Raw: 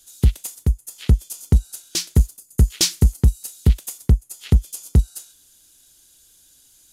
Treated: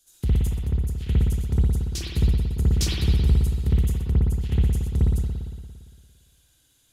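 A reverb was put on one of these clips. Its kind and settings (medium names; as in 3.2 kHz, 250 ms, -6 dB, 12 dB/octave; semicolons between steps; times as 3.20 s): spring tank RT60 1.7 s, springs 57 ms, chirp 40 ms, DRR -8.5 dB; trim -11.5 dB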